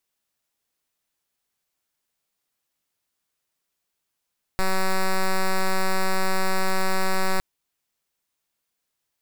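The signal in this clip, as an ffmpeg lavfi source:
ffmpeg -f lavfi -i "aevalsrc='0.1*(2*lt(mod(189*t,1),0.06)-1)':duration=2.81:sample_rate=44100" out.wav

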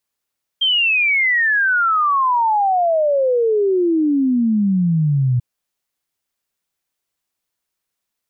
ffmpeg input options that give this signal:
ffmpeg -f lavfi -i "aevalsrc='0.224*clip(min(t,4.79-t)/0.01,0,1)*sin(2*PI*3200*4.79/log(120/3200)*(exp(log(120/3200)*t/4.79)-1))':duration=4.79:sample_rate=44100" out.wav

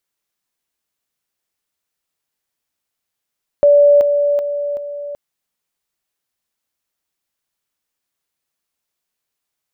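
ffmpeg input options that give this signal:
ffmpeg -f lavfi -i "aevalsrc='pow(10,(-6-6*floor(t/0.38))/20)*sin(2*PI*578*t)':duration=1.52:sample_rate=44100" out.wav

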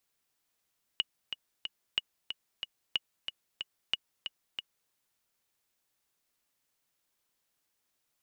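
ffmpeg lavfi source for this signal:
ffmpeg -f lavfi -i "aevalsrc='pow(10,(-14.5-8*gte(mod(t,3*60/184),60/184))/20)*sin(2*PI*2900*mod(t,60/184))*exp(-6.91*mod(t,60/184)/0.03)':duration=3.91:sample_rate=44100" out.wav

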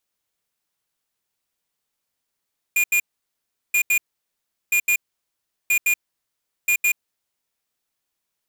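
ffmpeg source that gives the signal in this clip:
ffmpeg -f lavfi -i "aevalsrc='0.126*(2*lt(mod(2430*t,1),0.5)-1)*clip(min(mod(mod(t,0.98),0.16),0.08-mod(mod(t,0.98),0.16))/0.005,0,1)*lt(mod(t,0.98),0.32)':duration=4.9:sample_rate=44100" out.wav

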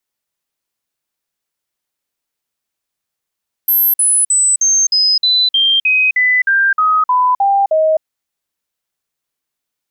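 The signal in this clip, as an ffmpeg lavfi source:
ffmpeg -f lavfi -i "aevalsrc='0.355*clip(min(mod(t,0.31),0.26-mod(t,0.31))/0.005,0,1)*sin(2*PI*12700*pow(2,-floor(t/0.31)/3)*mod(t,0.31))':duration=4.34:sample_rate=44100" out.wav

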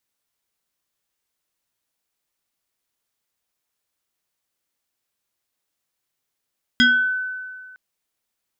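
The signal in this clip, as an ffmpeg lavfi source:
ffmpeg -f lavfi -i "aevalsrc='0.316*pow(10,-3*t/1.85)*sin(2*PI*1510*t+1.6*pow(10,-3*t/0.45)*sin(2*PI*1.16*1510*t))':duration=0.96:sample_rate=44100" out.wav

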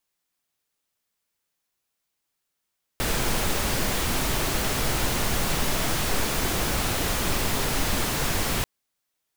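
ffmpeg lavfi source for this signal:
ffmpeg -f lavfi -i "anoisesrc=color=pink:amplitude=0.305:duration=5.64:sample_rate=44100:seed=1" out.wav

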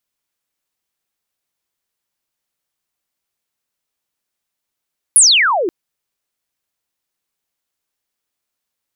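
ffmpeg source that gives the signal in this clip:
ffmpeg -f lavfi -i "aevalsrc='pow(10,(-4-11.5*t/0.53)/20)*sin(2*PI*11000*0.53/log(320/11000)*(exp(log(320/11000)*t/0.53)-1))':duration=0.53:sample_rate=44100" out.wav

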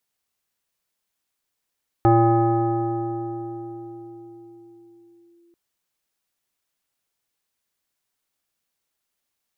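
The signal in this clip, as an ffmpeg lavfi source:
ffmpeg -f lavfi -i "aevalsrc='0.282*pow(10,-3*t/4.76)*sin(2*PI*342*t+1.3*clip(1-t/3.38,0,1)*sin(2*PI*1.34*342*t))':duration=3.49:sample_rate=44100" out.wav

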